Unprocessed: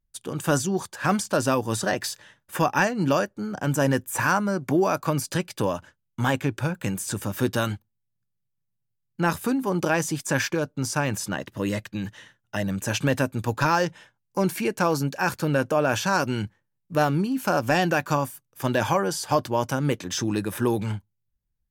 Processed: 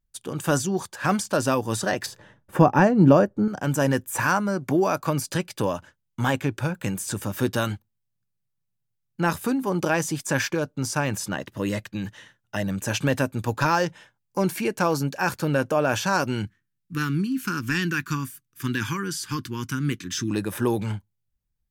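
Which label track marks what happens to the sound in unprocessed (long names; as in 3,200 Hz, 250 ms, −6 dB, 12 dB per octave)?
2.060000	3.480000	tilt shelving filter lows +9.5 dB, about 1,300 Hz
16.450000	20.310000	Chebyshev band-stop filter 300–1,400 Hz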